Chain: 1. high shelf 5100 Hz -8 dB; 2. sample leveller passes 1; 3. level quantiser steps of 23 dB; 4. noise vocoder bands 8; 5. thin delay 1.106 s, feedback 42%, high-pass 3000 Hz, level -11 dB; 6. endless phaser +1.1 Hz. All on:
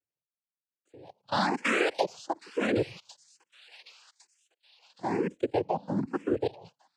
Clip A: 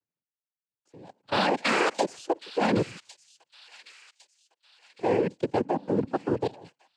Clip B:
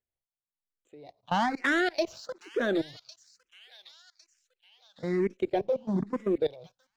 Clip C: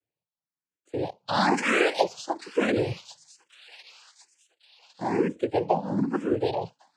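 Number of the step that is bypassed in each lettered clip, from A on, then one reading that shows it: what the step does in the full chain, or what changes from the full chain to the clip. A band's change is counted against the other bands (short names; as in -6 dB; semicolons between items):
6, 2 kHz band -2.0 dB; 4, 8 kHz band -3.5 dB; 3, momentary loudness spread change +2 LU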